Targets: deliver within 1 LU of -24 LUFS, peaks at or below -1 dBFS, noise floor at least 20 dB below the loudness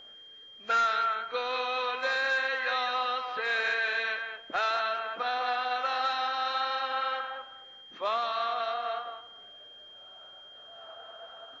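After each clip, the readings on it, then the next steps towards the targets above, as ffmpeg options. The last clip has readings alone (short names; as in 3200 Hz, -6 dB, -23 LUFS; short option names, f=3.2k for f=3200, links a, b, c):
steady tone 3200 Hz; tone level -48 dBFS; loudness -29.5 LUFS; peak -18.0 dBFS; loudness target -24.0 LUFS
-> -af "bandreject=f=3.2k:w=30"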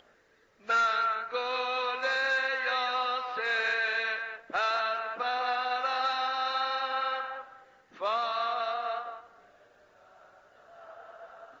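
steady tone none; loudness -29.5 LUFS; peak -18.5 dBFS; loudness target -24.0 LUFS
-> -af "volume=5.5dB"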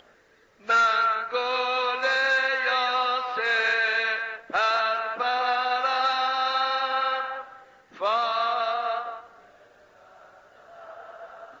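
loudness -24.0 LUFS; peak -13.0 dBFS; noise floor -58 dBFS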